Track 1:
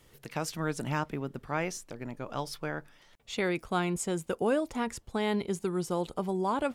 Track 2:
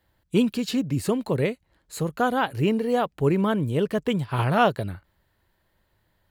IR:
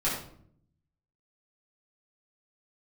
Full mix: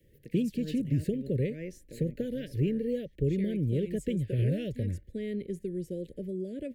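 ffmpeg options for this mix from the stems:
-filter_complex "[0:a]volume=-2.5dB[a];[1:a]lowpass=f=3.9k:p=1,asubboost=boost=4:cutoff=58,volume=2dB[b];[a][b]amix=inputs=2:normalize=0,equalizer=f=5.4k:w=0.38:g=-15,acrossover=split=140|3000[c][d][e];[d]acompressor=threshold=-29dB:ratio=6[f];[c][f][e]amix=inputs=3:normalize=0,asuperstop=centerf=1000:order=12:qfactor=0.84"

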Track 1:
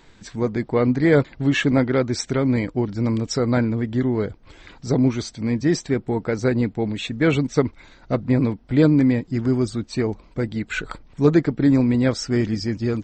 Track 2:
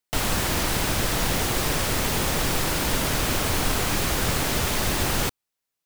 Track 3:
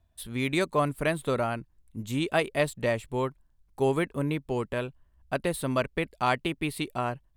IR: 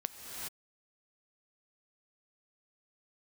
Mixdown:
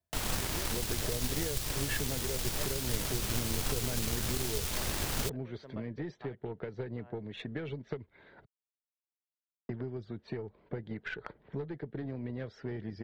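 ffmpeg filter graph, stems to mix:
-filter_complex "[0:a]asoftclip=type=tanh:threshold=-10.5dB,adelay=350,volume=1.5dB,asplit=3[a][b][c];[a]atrim=end=8.45,asetpts=PTS-STARTPTS,afade=t=out:st=8.446:d=0.004:c=hsin[d];[b]atrim=start=8.45:end=9.69,asetpts=PTS-STARTPTS,volume=0[e];[c]atrim=start=9.69,asetpts=PTS-STARTPTS,afade=t=in:d=0.004:c=hsin[f];[d][e][f]concat=n=3:v=0:a=1[g];[1:a]volume=-7.5dB[h];[2:a]volume=-11.5dB[i];[g][i]amix=inputs=2:normalize=0,highpass=110,equalizer=f=270:t=q:w=4:g=-5,equalizer=f=420:t=q:w=4:g=9,equalizer=f=610:t=q:w=4:g=4,equalizer=f=1.2k:t=q:w=4:g=-4,equalizer=f=1.7k:t=q:w=4:g=5,equalizer=f=2.5k:t=q:w=4:g=-7,lowpass=f=3.1k:w=0.5412,lowpass=f=3.1k:w=1.3066,acompressor=threshold=-44dB:ratio=1.5,volume=0dB[j];[h][j]amix=inputs=2:normalize=0,acrossover=split=130|3000[k][l][m];[l]acompressor=threshold=-35dB:ratio=10[n];[k][n][m]amix=inputs=3:normalize=0,aeval=exprs='0.126*(cos(1*acos(clip(val(0)/0.126,-1,1)))-cos(1*PI/2))+0.00501*(cos(6*acos(clip(val(0)/0.126,-1,1)))-cos(6*PI/2))+0.00631*(cos(7*acos(clip(val(0)/0.126,-1,1)))-cos(7*PI/2))':c=same"

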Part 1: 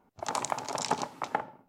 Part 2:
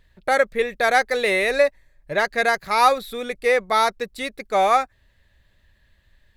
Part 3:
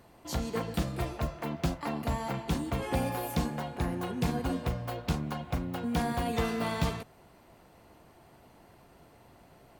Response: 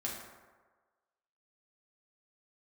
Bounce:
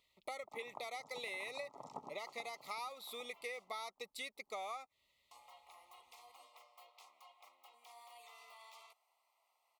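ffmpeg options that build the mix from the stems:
-filter_complex "[0:a]afwtdn=0.0178,adelay=250,volume=-4.5dB,asplit=2[a][b];[b]volume=-8dB[c];[1:a]highpass=f=1.3k:p=1,acompressor=threshold=-24dB:ratio=6,volume=-6dB,asplit=2[d][e];[2:a]highpass=f=820:w=0.5412,highpass=f=820:w=1.3066,alimiter=level_in=9dB:limit=-24dB:level=0:latency=1:release=33,volume=-9dB,adelay=1900,volume=-15.5dB,asplit=3[f][g][h];[f]atrim=end=3.88,asetpts=PTS-STARTPTS,afade=t=out:st=3.876:d=0.004:c=hsin[i];[g]atrim=start=3.88:end=5.31,asetpts=PTS-STARTPTS,volume=0[j];[h]atrim=start=5.31,asetpts=PTS-STARTPTS,afade=t=in:d=0.004:c=hsin[k];[i][j][k]concat=n=3:v=0:a=1[l];[e]apad=whole_len=85150[m];[a][m]sidechaincompress=threshold=-46dB:ratio=8:attack=36:release=299[n];[c]aecho=0:1:802|1604|2406|3208:1|0.26|0.0676|0.0176[o];[n][d][l][o]amix=inputs=4:normalize=0,asuperstop=centerf=1600:order=12:qfactor=2.6,acompressor=threshold=-45dB:ratio=3"

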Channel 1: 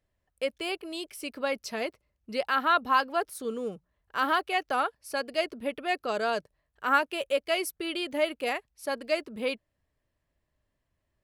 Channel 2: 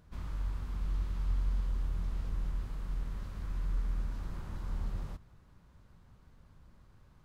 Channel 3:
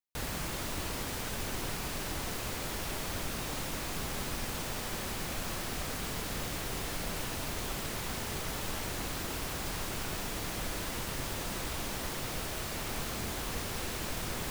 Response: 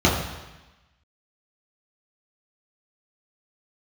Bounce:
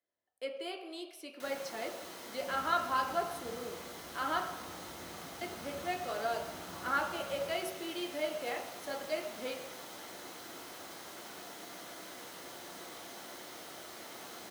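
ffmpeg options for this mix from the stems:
-filter_complex "[0:a]volume=-11dB,asplit=3[a][b][c];[a]atrim=end=4.4,asetpts=PTS-STARTPTS,afade=t=out:st=4.396:d=0.004:c=hsin[d];[b]atrim=start=4.4:end=5.41,asetpts=PTS-STARTPTS,volume=0[e];[c]atrim=start=5.41,asetpts=PTS-STARTPTS,afade=t=in:d=0.004:c=hsin[f];[d][e][f]concat=n=3:v=0:a=1,asplit=2[g][h];[h]volume=-19dB[i];[1:a]acompressor=threshold=-35dB:ratio=6,adelay=2350,volume=-5dB,asplit=2[j][k];[k]volume=-10dB[l];[2:a]adelay=1250,volume=-11.5dB,asplit=2[m][n];[n]volume=-19.5dB[o];[3:a]atrim=start_sample=2205[p];[i][l][o]amix=inputs=3:normalize=0[q];[q][p]afir=irnorm=-1:irlink=0[r];[g][j][m][r]amix=inputs=4:normalize=0,highpass=470"

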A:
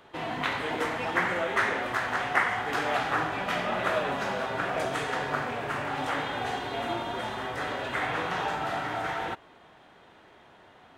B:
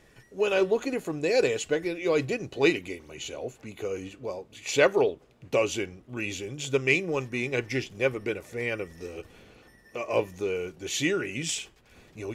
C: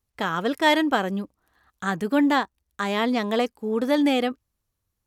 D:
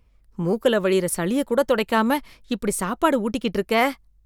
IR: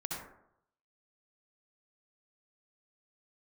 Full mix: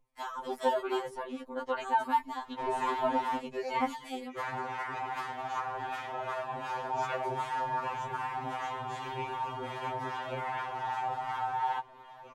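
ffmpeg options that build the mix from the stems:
-filter_complex "[0:a]asubboost=boost=4.5:cutoff=86,alimiter=limit=-18.5dB:level=0:latency=1:release=218,adelay=2450,volume=0.5dB,asplit=3[a][b][c];[a]atrim=end=3.39,asetpts=PTS-STARTPTS,afade=t=out:st=3.386:d=0.004:c=hsin[d];[b]atrim=start=3.39:end=4.38,asetpts=PTS-STARTPTS,volume=0[e];[c]atrim=start=4.38,asetpts=PTS-STARTPTS,afade=t=in:d=0.004:c=hsin[f];[d][e][f]concat=n=3:v=0:a=1[g];[1:a]adelay=2300,volume=-15.5dB[h];[2:a]equalizer=f=8.3k:t=o:w=2.2:g=13,volume=-15.5dB[i];[3:a]lowpass=5.2k,volume=-11.5dB[j];[g][i]amix=inputs=2:normalize=0,asoftclip=type=hard:threshold=-20.5dB,acompressor=threshold=-35dB:ratio=6,volume=0dB[k];[h][j][k]amix=inputs=3:normalize=0,equalizer=f=920:w=2.2:g=14,acrossover=split=780[l][m];[l]aeval=exprs='val(0)*(1-0.5/2+0.5/2*cos(2*PI*2.6*n/s))':c=same[n];[m]aeval=exprs='val(0)*(1-0.5/2-0.5/2*cos(2*PI*2.6*n/s))':c=same[o];[n][o]amix=inputs=2:normalize=0,afftfilt=real='re*2.45*eq(mod(b,6),0)':imag='im*2.45*eq(mod(b,6),0)':win_size=2048:overlap=0.75"

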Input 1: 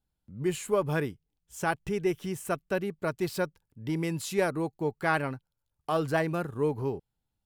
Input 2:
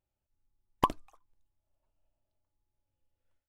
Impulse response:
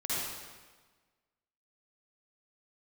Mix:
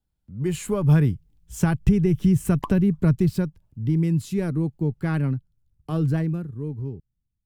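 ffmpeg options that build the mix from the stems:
-filter_complex "[0:a]asubboost=boost=8.5:cutoff=240,dynaudnorm=f=230:g=5:m=8dB,lowshelf=f=440:g=4,volume=-1.5dB,afade=t=out:st=3.08:d=0.42:silence=0.316228,afade=t=out:st=6.09:d=0.36:silence=0.334965,asplit=2[a][b];[1:a]adelay=1800,volume=2.5dB[c];[b]apad=whole_len=233138[d];[c][d]sidechaincompress=threshold=-21dB:ratio=5:attack=26:release=459[e];[a][e]amix=inputs=2:normalize=0,acrossover=split=180[f][g];[g]acompressor=threshold=-22dB:ratio=10[h];[f][h]amix=inputs=2:normalize=0"

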